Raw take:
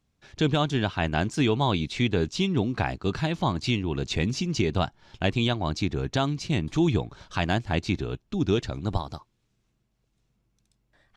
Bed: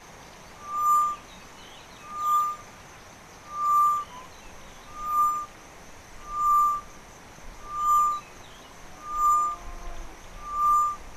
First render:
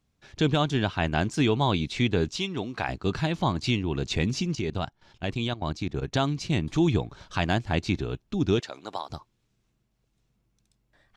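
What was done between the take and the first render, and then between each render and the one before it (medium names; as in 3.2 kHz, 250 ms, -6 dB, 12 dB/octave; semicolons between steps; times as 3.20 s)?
2.36–2.89 s: bass shelf 330 Hz -11.5 dB; 4.55–6.13 s: level held to a coarse grid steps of 14 dB; 8.60–9.10 s: high-pass 530 Hz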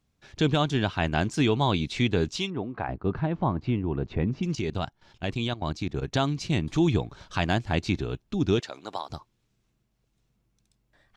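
2.50–4.43 s: low-pass 1.3 kHz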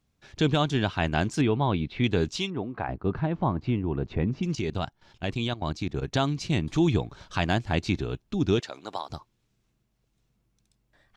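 1.41–2.04 s: distance through air 370 m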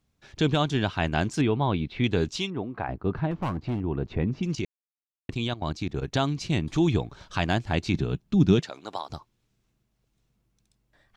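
3.31–3.81 s: hard clipper -24.5 dBFS; 4.65–5.29 s: mute; 7.94–8.70 s: peaking EQ 170 Hz +11 dB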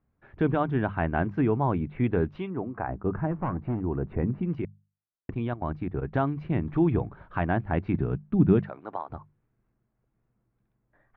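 low-pass 1.8 kHz 24 dB/octave; hum notches 50/100/150/200 Hz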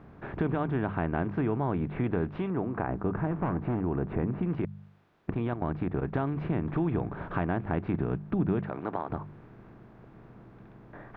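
spectral levelling over time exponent 0.6; compression 2:1, threshold -31 dBFS, peak gain reduction 10 dB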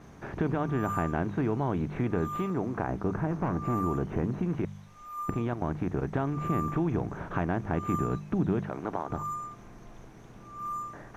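add bed -14 dB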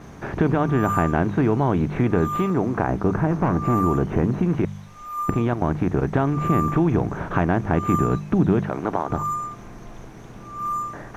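trim +9 dB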